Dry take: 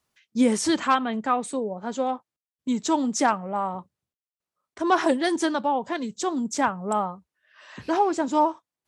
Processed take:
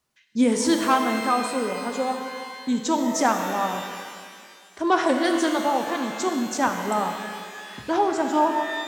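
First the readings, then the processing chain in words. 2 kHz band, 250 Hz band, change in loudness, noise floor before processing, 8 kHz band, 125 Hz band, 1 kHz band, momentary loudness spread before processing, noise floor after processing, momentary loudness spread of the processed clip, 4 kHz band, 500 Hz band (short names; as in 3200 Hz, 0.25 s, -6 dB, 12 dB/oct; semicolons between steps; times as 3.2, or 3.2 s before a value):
+3.5 dB, +1.5 dB, +1.5 dB, under -85 dBFS, +2.0 dB, +0.5 dB, +1.5 dB, 9 LU, -50 dBFS, 13 LU, +3.5 dB, +2.0 dB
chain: shimmer reverb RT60 2.1 s, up +12 st, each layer -8 dB, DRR 4.5 dB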